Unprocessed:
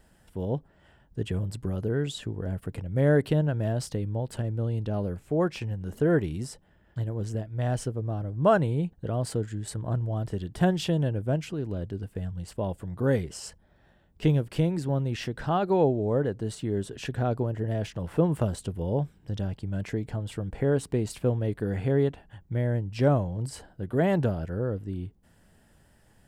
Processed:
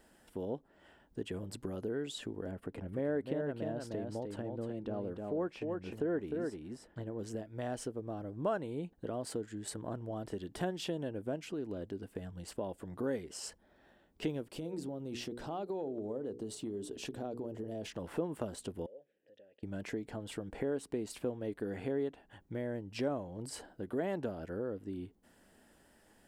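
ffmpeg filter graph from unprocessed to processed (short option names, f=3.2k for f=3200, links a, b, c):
-filter_complex "[0:a]asettb=1/sr,asplit=3[a][b][c];[a]atrim=end=2.514[d];[b]atrim=start=2.51:end=7.19,asetpts=PTS-STARTPTS,afade=t=in:d=0.004:c=qsin,afade=t=out:st=4.676:d=0.004:c=qsin,highshelf=f=3.7k:g=-11.5,aecho=1:1:305:0.531,atrim=end_sample=206388[e];[c]atrim=start=7.186[f];[d][e]acrossfade=d=0.004:c1=hsin:c2=qsin[g];[g][f]acrossfade=d=0.004:c1=qsin:c2=hsin,asettb=1/sr,asplit=3[h][i][j];[h]atrim=end=14.514[k];[i]atrim=start=14.51:end=17.86,asetpts=PTS-STARTPTS,afade=t=in:d=0.004:c=qsin,afade=t=out:st=3.346:d=0.004:c=qsin,equalizer=f=1.7k:t=o:w=1.1:g=-11.5,bandreject=f=60:t=h:w=6,bandreject=f=120:t=h:w=6,bandreject=f=180:t=h:w=6,bandreject=f=240:t=h:w=6,bandreject=f=300:t=h:w=6,bandreject=f=360:t=h:w=6,bandreject=f=420:t=h:w=6,bandreject=f=480:t=h:w=6,acompressor=threshold=-28dB:ratio=6:attack=3.2:release=140:knee=1:detection=peak[l];[j]atrim=start=17.856[m];[k][l]acrossfade=d=0.004:c1=hsin:c2=qsin[n];[n][m]acrossfade=d=0.004:c1=qsin:c2=hsin,asettb=1/sr,asplit=3[o][p][q];[o]atrim=end=18.864[r];[p]atrim=start=18.86:end=19.63,asetpts=PTS-STARTPTS,afade=t=in:d=0.004:c=qsin,afade=t=out:st=0.766:d=0.004:c=qsin,acompressor=threshold=-37dB:ratio=8:attack=3.2:release=140:knee=1:detection=peak,asplit=3[s][t][u];[s]bandpass=f=530:t=q:w=8,volume=0dB[v];[t]bandpass=f=1.84k:t=q:w=8,volume=-6dB[w];[u]bandpass=f=2.48k:t=q:w=8,volume=-9dB[x];[v][w][x]amix=inputs=3:normalize=0[y];[q]atrim=start=19.626[z];[r][y]acrossfade=d=0.004:c1=hsin:c2=qsin[aa];[aa][z]acrossfade=d=0.004:c1=qsin:c2=hsin,lowshelf=f=190:t=q:w=1.5:g=-9.5,acompressor=threshold=-38dB:ratio=2,volume=-1.5dB"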